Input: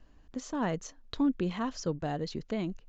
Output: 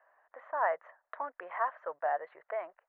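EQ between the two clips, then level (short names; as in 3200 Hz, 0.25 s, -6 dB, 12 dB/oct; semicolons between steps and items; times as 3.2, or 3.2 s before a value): elliptic band-pass 610–1900 Hz, stop band 50 dB; air absorption 85 m; +7.0 dB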